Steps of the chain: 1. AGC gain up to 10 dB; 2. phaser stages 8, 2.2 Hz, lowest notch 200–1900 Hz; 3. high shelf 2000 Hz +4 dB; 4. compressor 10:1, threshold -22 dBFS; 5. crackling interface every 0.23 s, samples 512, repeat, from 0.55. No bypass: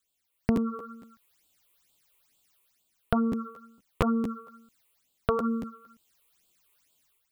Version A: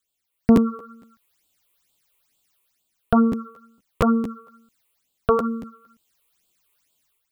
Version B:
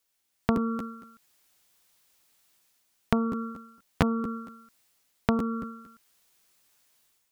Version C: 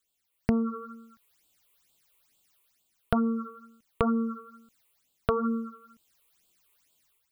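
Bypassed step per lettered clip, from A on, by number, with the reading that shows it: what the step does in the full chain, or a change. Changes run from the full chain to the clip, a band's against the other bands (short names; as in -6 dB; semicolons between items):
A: 4, mean gain reduction 3.5 dB; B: 2, 4 kHz band +3.5 dB; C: 5, 4 kHz band -2.5 dB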